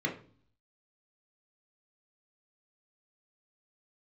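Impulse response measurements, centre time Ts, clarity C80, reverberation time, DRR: 18 ms, 15.5 dB, 0.45 s, -0.5 dB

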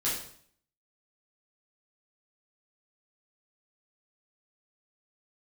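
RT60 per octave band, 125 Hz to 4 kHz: 0.65, 0.65, 0.60, 0.55, 0.55, 0.55 s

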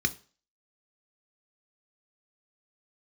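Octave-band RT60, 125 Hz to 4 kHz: 0.35, 0.35, 0.40, 0.40, 0.35, 0.40 s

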